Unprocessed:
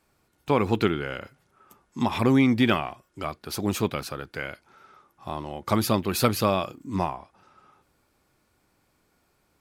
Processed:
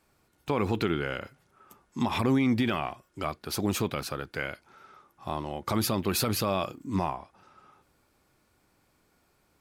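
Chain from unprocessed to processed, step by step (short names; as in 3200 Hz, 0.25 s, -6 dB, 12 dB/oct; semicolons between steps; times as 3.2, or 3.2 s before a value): limiter -16 dBFS, peak gain reduction 11 dB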